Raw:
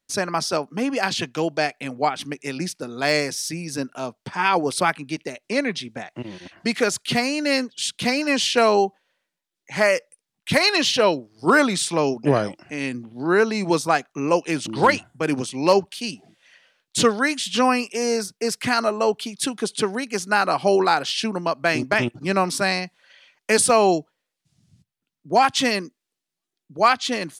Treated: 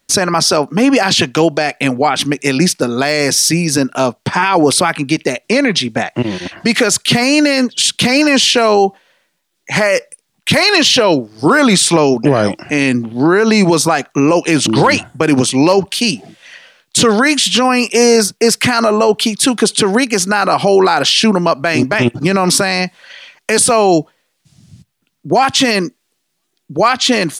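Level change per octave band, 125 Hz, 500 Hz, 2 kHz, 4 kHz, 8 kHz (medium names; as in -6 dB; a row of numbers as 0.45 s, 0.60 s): +12.5 dB, +8.5 dB, +8.0 dB, +11.5 dB, +12.5 dB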